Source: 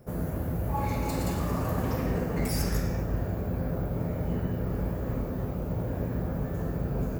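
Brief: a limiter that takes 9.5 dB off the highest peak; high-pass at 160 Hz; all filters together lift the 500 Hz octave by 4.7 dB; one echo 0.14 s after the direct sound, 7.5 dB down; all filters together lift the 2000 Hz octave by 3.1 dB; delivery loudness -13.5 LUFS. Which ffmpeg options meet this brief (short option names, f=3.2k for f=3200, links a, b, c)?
-af "highpass=160,equalizer=f=500:t=o:g=5.5,equalizer=f=2k:t=o:g=3.5,alimiter=level_in=0.5dB:limit=-24dB:level=0:latency=1,volume=-0.5dB,aecho=1:1:140:0.422,volume=19.5dB"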